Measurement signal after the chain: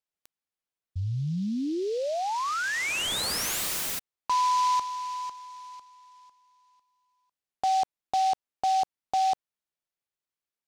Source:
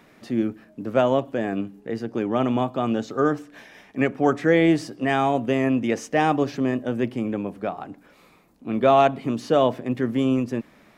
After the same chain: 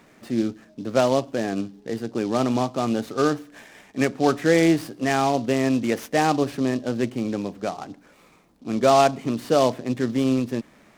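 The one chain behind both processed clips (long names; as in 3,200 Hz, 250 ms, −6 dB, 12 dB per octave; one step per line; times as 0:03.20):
short delay modulated by noise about 4,100 Hz, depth 0.03 ms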